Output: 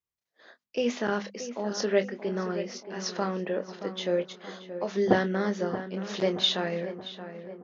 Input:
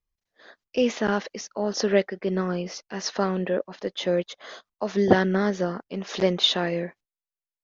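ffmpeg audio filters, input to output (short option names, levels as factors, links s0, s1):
-filter_complex "[0:a]highpass=99,bandreject=f=50:t=h:w=6,bandreject=f=100:t=h:w=6,bandreject=f=150:t=h:w=6,bandreject=f=200:t=h:w=6,bandreject=f=250:t=h:w=6,asplit=2[s0][s1];[s1]adelay=25,volume=0.355[s2];[s0][s2]amix=inputs=2:normalize=0,asplit=2[s3][s4];[s4]adelay=626,lowpass=f=2200:p=1,volume=0.282,asplit=2[s5][s6];[s6]adelay=626,lowpass=f=2200:p=1,volume=0.53,asplit=2[s7][s8];[s8]adelay=626,lowpass=f=2200:p=1,volume=0.53,asplit=2[s9][s10];[s10]adelay=626,lowpass=f=2200:p=1,volume=0.53,asplit=2[s11][s12];[s12]adelay=626,lowpass=f=2200:p=1,volume=0.53,asplit=2[s13][s14];[s14]adelay=626,lowpass=f=2200:p=1,volume=0.53[s15];[s5][s7][s9][s11][s13][s15]amix=inputs=6:normalize=0[s16];[s3][s16]amix=inputs=2:normalize=0,volume=0.596"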